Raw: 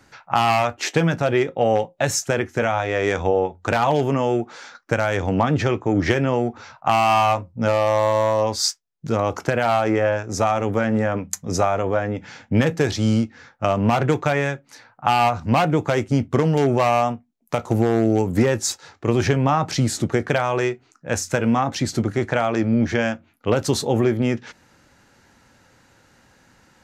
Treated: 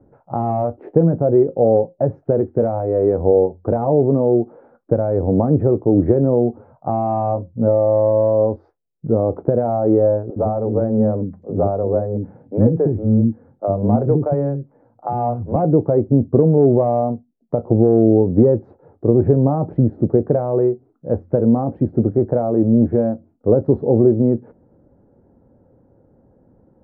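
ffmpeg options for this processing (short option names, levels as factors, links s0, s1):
-filter_complex "[0:a]asettb=1/sr,asplit=3[s0][s1][s2];[s0]atrim=end=10.304[s3];[s1]atrim=start=10.3:end=15.56,asetpts=PTS-STARTPTS,afade=t=in:d=0.004:c=qsin,afade=t=out:st=5.256:d=0.004:c=qsin,acrossover=split=350|3200[s4][s5][s6];[s4]adelay=60[s7];[s6]adelay=90[s8];[s7][s5][s8]amix=inputs=3:normalize=0,atrim=end_sample=231966[s9];[s2]atrim=start=15.556[s10];[s3][s9]acrossfade=d=0.004:c1=hsin:c2=qsin[s11];[s11][s10]acrossfade=d=0.004:c1=qsin:c2=hsin,lowpass=f=1100:w=0.5412,lowpass=f=1100:w=1.3066,lowshelf=f=740:t=q:w=1.5:g=12,volume=0.398"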